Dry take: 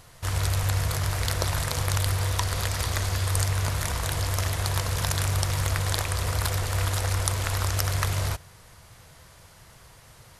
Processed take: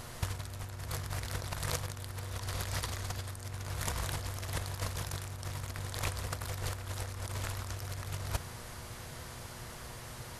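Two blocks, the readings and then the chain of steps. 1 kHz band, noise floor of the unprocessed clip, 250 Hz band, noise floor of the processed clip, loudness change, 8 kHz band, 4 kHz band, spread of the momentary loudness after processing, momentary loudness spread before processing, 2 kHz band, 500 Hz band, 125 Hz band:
−10.5 dB, −52 dBFS, −8.0 dB, −46 dBFS, −12.5 dB, −11.5 dB, −11.0 dB, 9 LU, 2 LU, −10.5 dB, −10.0 dB, −12.5 dB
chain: compressor whose output falls as the input rises −32 dBFS, ratio −0.5
hum with harmonics 120 Hz, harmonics 15, −50 dBFS −4 dB per octave
level −3.5 dB

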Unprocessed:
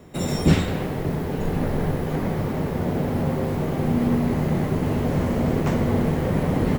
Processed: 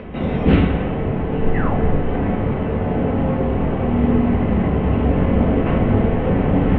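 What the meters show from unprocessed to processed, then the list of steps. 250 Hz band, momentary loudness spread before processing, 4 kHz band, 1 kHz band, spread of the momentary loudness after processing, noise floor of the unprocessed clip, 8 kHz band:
+4.5 dB, 5 LU, can't be measured, +5.0 dB, 5 LU, −27 dBFS, below −35 dB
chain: Chebyshev low-pass filter 3,000 Hz, order 4
parametric band 64 Hz +9 dB 0.5 octaves
sound drawn into the spectrogram fall, 0:01.54–0:01.77, 600–2,100 Hz −33 dBFS
upward compression, threshold −28 dBFS
rectangular room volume 190 cubic metres, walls furnished, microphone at 2 metres
highs frequency-modulated by the lows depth 0.17 ms

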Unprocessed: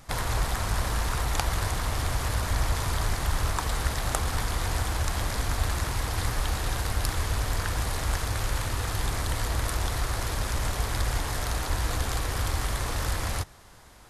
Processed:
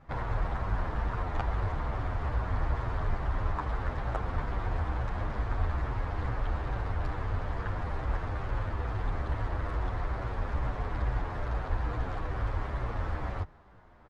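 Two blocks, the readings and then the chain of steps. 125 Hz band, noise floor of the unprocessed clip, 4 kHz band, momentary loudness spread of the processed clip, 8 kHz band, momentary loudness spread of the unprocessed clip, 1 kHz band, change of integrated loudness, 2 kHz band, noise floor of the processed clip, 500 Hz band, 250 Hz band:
−3.0 dB, −50 dBFS, −19.0 dB, 3 LU, below −30 dB, 2 LU, −4.0 dB, −5.0 dB, −7.5 dB, −51 dBFS, −3.0 dB, −3.0 dB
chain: low-pass filter 1,500 Hz 12 dB per octave
barber-pole flanger 9.3 ms −2.3 Hz

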